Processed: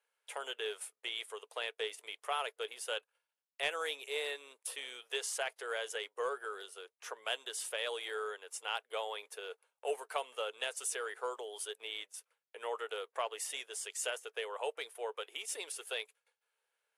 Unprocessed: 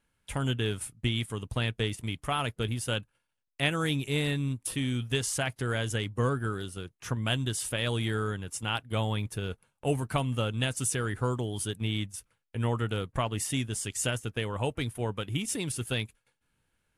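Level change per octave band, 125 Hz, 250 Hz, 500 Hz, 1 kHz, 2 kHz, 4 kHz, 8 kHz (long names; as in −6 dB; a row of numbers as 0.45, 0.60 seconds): below −40 dB, −29.0 dB, −5.5 dB, −5.0 dB, −5.5 dB, −5.5 dB, −6.5 dB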